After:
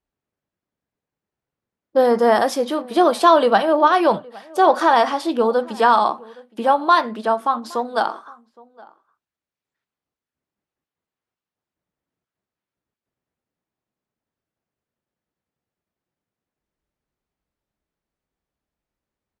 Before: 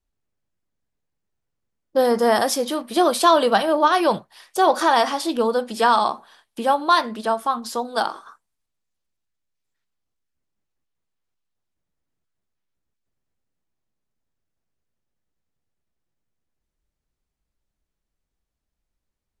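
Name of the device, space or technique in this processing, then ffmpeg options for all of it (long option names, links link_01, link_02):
through cloth: -filter_complex "[0:a]highpass=frequency=180:poles=1,highshelf=frequency=3800:gain=-13,asplit=2[link_01][link_02];[link_02]adelay=816.3,volume=-23dB,highshelf=frequency=4000:gain=-18.4[link_03];[link_01][link_03]amix=inputs=2:normalize=0,volume=3.5dB"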